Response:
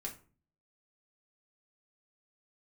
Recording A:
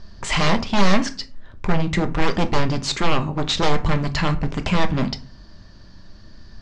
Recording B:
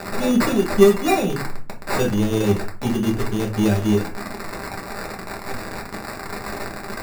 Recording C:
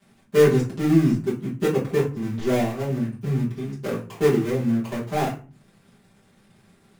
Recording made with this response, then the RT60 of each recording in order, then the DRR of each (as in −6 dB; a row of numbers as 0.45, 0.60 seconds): B; 0.40, 0.40, 0.40 seconds; 6.5, −1.0, −10.0 decibels